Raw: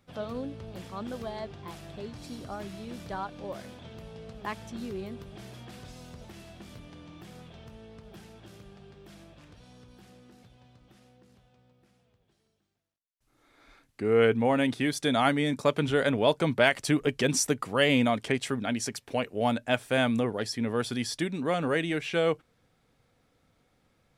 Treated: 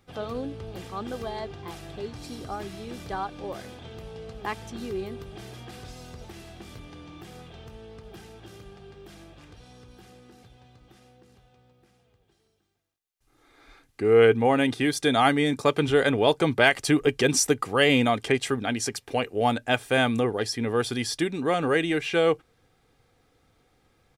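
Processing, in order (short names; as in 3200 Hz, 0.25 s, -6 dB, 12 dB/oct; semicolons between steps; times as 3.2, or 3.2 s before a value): comb 2.5 ms, depth 37%; gain +3.5 dB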